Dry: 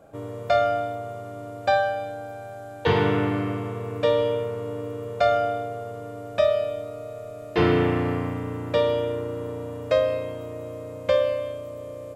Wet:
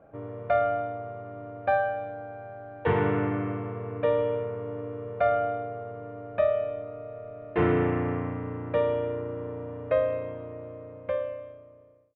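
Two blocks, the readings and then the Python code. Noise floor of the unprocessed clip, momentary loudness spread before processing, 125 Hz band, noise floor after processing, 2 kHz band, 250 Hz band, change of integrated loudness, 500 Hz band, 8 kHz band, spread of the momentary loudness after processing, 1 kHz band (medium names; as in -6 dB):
-38 dBFS, 15 LU, -3.5 dB, -51 dBFS, -4.5 dB, -3.5 dB, -3.5 dB, -4.0 dB, no reading, 15 LU, -3.5 dB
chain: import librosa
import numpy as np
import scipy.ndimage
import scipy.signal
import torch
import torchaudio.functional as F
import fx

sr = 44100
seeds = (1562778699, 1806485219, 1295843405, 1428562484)

y = fx.fade_out_tail(x, sr, length_s=1.83)
y = scipy.signal.sosfilt(scipy.signal.butter(4, 2300.0, 'lowpass', fs=sr, output='sos'), y)
y = F.gain(torch.from_numpy(y), -3.5).numpy()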